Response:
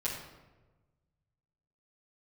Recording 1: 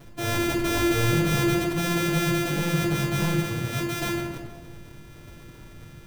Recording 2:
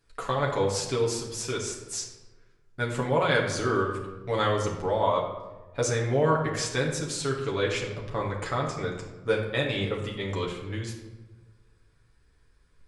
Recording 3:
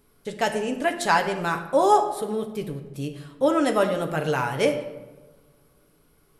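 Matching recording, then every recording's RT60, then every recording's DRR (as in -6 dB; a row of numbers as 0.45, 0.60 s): 1; 1.2, 1.2, 1.2 s; -9.0, -2.5, 3.5 dB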